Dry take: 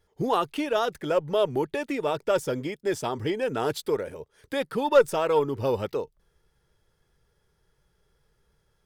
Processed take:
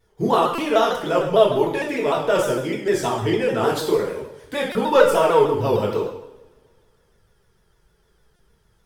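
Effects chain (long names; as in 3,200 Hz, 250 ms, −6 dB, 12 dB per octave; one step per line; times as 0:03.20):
coupled-rooms reverb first 0.74 s, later 2.5 s, from −26 dB, DRR −3.5 dB
buffer that repeats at 0:00.55/0:04.72/0:08.36, samples 128, times 10
pitch modulation by a square or saw wave saw down 6.6 Hz, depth 100 cents
level +2 dB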